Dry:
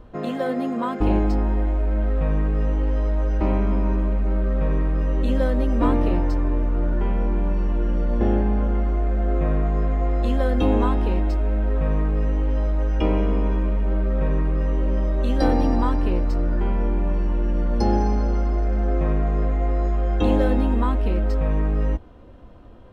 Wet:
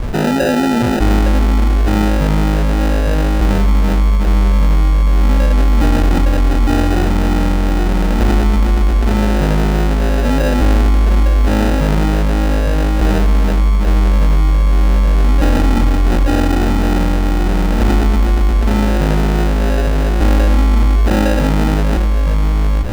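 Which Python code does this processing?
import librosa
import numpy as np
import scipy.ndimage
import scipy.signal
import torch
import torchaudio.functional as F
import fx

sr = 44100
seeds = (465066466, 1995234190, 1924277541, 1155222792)

y = fx.low_shelf(x, sr, hz=300.0, db=7.5)
y = y + 10.0 ** (-4.5 / 20.0) * np.pad(y, (int(858 * sr / 1000.0), 0))[:len(y)]
y = fx.sample_hold(y, sr, seeds[0], rate_hz=1100.0, jitter_pct=0)
y = fx.high_shelf(y, sr, hz=4400.0, db=-8.5)
y = fx.env_flatten(y, sr, amount_pct=70)
y = F.gain(torch.from_numpy(y), -2.0).numpy()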